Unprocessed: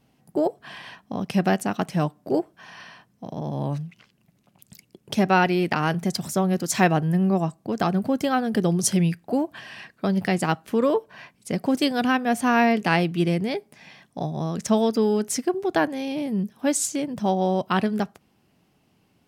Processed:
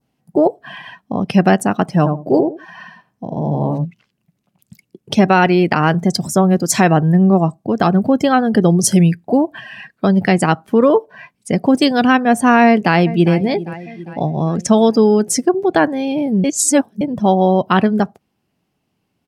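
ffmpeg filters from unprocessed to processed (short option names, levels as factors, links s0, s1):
-filter_complex "[0:a]asplit=3[s0][s1][s2];[s0]afade=t=out:st=2.05:d=0.02[s3];[s1]asplit=2[s4][s5];[s5]adelay=81,lowpass=f=1000:p=1,volume=0.631,asplit=2[s6][s7];[s7]adelay=81,lowpass=f=1000:p=1,volume=0.22,asplit=2[s8][s9];[s9]adelay=81,lowpass=f=1000:p=1,volume=0.22[s10];[s4][s6][s8][s10]amix=inputs=4:normalize=0,afade=t=in:st=2.05:d=0.02,afade=t=out:st=3.84:d=0.02[s11];[s2]afade=t=in:st=3.84:d=0.02[s12];[s3][s11][s12]amix=inputs=3:normalize=0,asplit=2[s13][s14];[s14]afade=t=in:st=12.66:d=0.01,afade=t=out:st=13.33:d=0.01,aecho=0:1:400|800|1200|1600|2000|2400:0.177828|0.106697|0.0640181|0.0384108|0.0230465|0.0138279[s15];[s13][s15]amix=inputs=2:normalize=0,asplit=3[s16][s17][s18];[s16]atrim=end=16.442[s19];[s17]atrim=start=16.438:end=17.012,asetpts=PTS-STARTPTS,areverse[s20];[s18]atrim=start=17.008[s21];[s19][s20]acrossfade=d=0.004:c1=hsin:c2=hsin[s22];[s22][s21]acrossfade=d=0.004:c1=hsin:c2=hsin,adynamicequalizer=threshold=0.00794:dfrequency=2700:dqfactor=1.2:tfrequency=2700:tqfactor=1.2:attack=5:release=100:ratio=0.375:range=1.5:mode=cutabove:tftype=bell,afftdn=nr=15:nf=-40,alimiter=level_in=3.35:limit=0.891:release=50:level=0:latency=1,volume=0.891"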